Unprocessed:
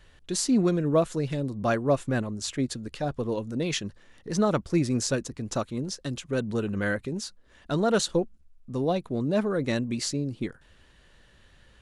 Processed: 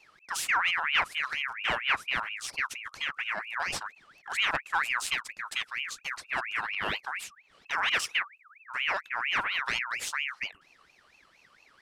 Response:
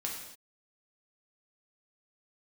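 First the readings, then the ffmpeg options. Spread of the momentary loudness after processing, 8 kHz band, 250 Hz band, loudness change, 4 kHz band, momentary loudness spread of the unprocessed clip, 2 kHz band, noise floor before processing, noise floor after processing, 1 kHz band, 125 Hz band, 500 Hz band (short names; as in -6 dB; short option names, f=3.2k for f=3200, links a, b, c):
10 LU, -5.0 dB, -26.0 dB, -2.0 dB, +4.0 dB, 9 LU, +9.5 dB, -58 dBFS, -63 dBFS, +2.5 dB, -24.5 dB, -18.0 dB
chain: -af "aeval=exprs='0.299*(cos(1*acos(clip(val(0)/0.299,-1,1)))-cos(1*PI/2))+0.0133*(cos(8*acos(clip(val(0)/0.299,-1,1)))-cos(8*PI/2))':c=same,aeval=exprs='val(0)*sin(2*PI*1900*n/s+1900*0.4/4.3*sin(2*PI*4.3*n/s))':c=same,volume=-2dB"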